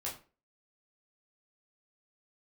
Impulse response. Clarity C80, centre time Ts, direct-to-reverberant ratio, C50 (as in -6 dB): 14.0 dB, 26 ms, -5.5 dB, 9.0 dB